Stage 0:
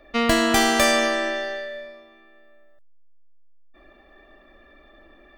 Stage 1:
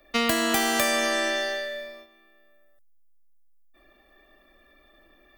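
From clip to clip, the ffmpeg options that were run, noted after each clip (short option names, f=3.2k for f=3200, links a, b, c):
-filter_complex "[0:a]aemphasis=mode=production:type=75fm,agate=range=-7dB:threshold=-47dB:ratio=16:detection=peak,acrossover=split=110|3100[a][b][c];[a]acompressor=threshold=-50dB:ratio=4[d];[b]acompressor=threshold=-22dB:ratio=4[e];[c]acompressor=threshold=-31dB:ratio=4[f];[d][e][f]amix=inputs=3:normalize=0"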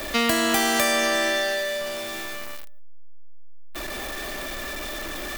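-af "aeval=exprs='val(0)+0.5*0.0473*sgn(val(0))':c=same"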